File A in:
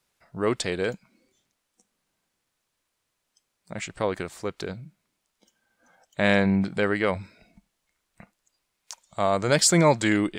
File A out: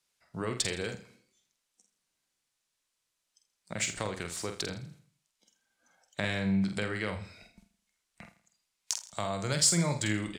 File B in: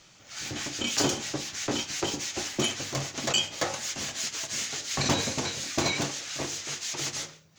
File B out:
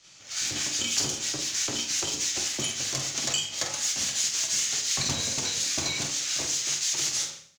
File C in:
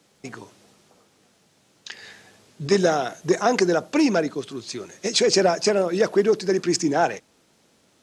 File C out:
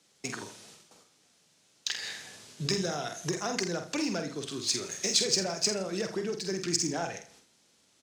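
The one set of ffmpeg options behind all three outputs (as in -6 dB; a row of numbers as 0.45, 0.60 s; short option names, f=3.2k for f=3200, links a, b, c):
-filter_complex "[0:a]agate=range=-9dB:threshold=-56dB:ratio=16:detection=peak,acrossover=split=150[a][b];[b]acompressor=threshold=-33dB:ratio=4[c];[a][c]amix=inputs=2:normalize=0,crystalizer=i=5:c=0,adynamicsmooth=sensitivity=3:basefreq=7.7k,asplit=2[d][e];[e]adelay=47,volume=-7dB[f];[d][f]amix=inputs=2:normalize=0,aecho=1:1:82|164|246|328:0.178|0.0694|0.027|0.0105,volume=-2.5dB"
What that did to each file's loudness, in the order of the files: -7.0, +3.5, -9.5 LU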